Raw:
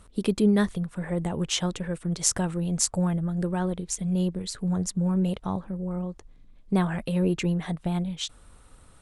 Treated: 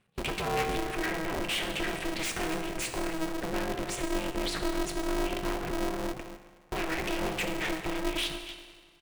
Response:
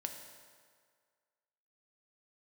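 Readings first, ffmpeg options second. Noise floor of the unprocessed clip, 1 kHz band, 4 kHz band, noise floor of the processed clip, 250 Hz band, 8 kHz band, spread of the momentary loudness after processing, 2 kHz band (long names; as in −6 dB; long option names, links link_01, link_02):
−54 dBFS, +2.5 dB, +0.5 dB, −58 dBFS, −8.5 dB, −9.0 dB, 6 LU, +6.0 dB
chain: -filter_complex "[0:a]agate=range=-28dB:threshold=-41dB:ratio=16:detection=peak,bandreject=frequency=490:width=15,asplit=2[link_01][link_02];[link_02]adelay=268.2,volume=-24dB,highshelf=frequency=4000:gain=-6.04[link_03];[link_01][link_03]amix=inputs=2:normalize=0,aeval=exprs='0.596*sin(PI/2*7.08*val(0)/0.596)':channel_layout=same,alimiter=limit=-11.5dB:level=0:latency=1,bass=frequency=250:gain=-8,treble=frequency=4000:gain=-10,acompressor=threshold=-22dB:ratio=6,equalizer=frequency=1000:width_type=o:width=0.67:gain=-9,equalizer=frequency=2500:width_type=o:width=0.67:gain=12,equalizer=frequency=6300:width_type=o:width=0.67:gain=-5,flanger=delay=0.4:depth=8.3:regen=-78:speed=0.92:shape=triangular,asoftclip=type=hard:threshold=-26dB[link_04];[1:a]atrim=start_sample=2205[link_05];[link_04][link_05]afir=irnorm=-1:irlink=0,aeval=exprs='val(0)*sgn(sin(2*PI*160*n/s))':channel_layout=same"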